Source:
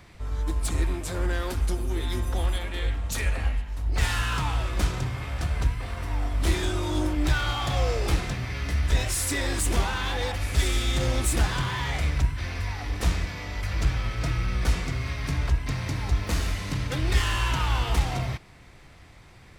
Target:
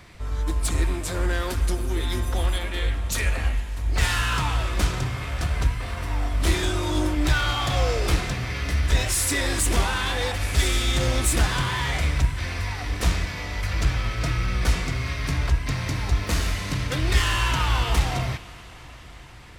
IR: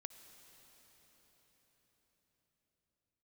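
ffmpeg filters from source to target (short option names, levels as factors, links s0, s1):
-filter_complex "[0:a]bandreject=f=830:w=20,asplit=2[s0][s1];[1:a]atrim=start_sample=2205,asetrate=29988,aresample=44100,lowshelf=f=500:g=-8.5[s2];[s1][s2]afir=irnorm=-1:irlink=0,volume=1[s3];[s0][s3]amix=inputs=2:normalize=0"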